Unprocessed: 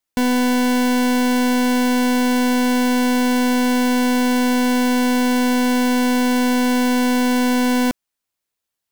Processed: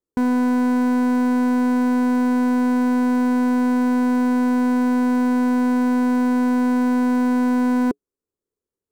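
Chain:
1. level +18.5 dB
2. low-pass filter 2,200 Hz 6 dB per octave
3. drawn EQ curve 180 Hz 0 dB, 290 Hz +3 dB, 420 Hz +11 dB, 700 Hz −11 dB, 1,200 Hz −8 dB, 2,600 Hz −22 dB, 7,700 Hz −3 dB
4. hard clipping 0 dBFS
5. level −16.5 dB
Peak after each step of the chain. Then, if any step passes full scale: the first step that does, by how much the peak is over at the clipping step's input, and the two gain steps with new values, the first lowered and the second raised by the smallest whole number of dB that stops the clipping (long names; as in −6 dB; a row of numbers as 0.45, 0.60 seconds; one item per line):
+2.0, +2.0, +8.5, 0.0, −16.5 dBFS
step 1, 8.5 dB
step 1 +9.5 dB, step 5 −7.5 dB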